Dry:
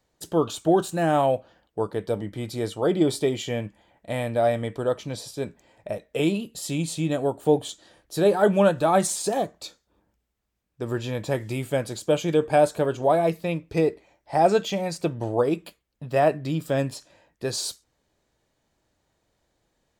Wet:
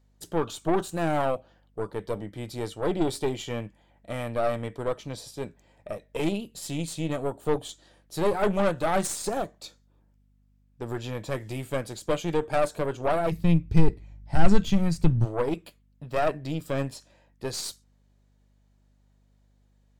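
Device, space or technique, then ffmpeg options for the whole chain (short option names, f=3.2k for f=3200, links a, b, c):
valve amplifier with mains hum: -filter_complex "[0:a]aeval=exprs='(tanh(7.94*val(0)+0.75)-tanh(0.75))/7.94':c=same,aeval=exprs='val(0)+0.000794*(sin(2*PI*50*n/s)+sin(2*PI*2*50*n/s)/2+sin(2*PI*3*50*n/s)/3+sin(2*PI*4*50*n/s)/4+sin(2*PI*5*50*n/s)/5)':c=same,asplit=3[a][b][c];[a]afade=t=out:st=13.31:d=0.02[d];[b]asubboost=boost=10:cutoff=160,afade=t=in:st=13.31:d=0.02,afade=t=out:st=15.24:d=0.02[e];[c]afade=t=in:st=15.24:d=0.02[f];[d][e][f]amix=inputs=3:normalize=0"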